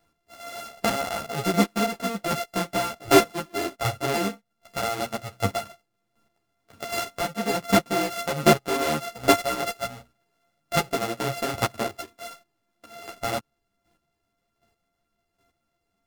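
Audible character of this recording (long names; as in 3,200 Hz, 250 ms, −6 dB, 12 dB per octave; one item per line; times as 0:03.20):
a buzz of ramps at a fixed pitch in blocks of 64 samples
chopped level 1.3 Hz, depth 65%, duty 15%
a shimmering, thickened sound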